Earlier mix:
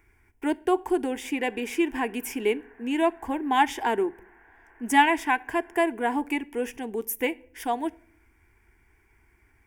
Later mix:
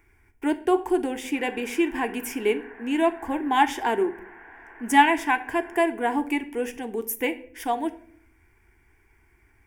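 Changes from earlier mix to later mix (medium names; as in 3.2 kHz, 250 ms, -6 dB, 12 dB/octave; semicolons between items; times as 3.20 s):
speech: send +9.5 dB; background +9.5 dB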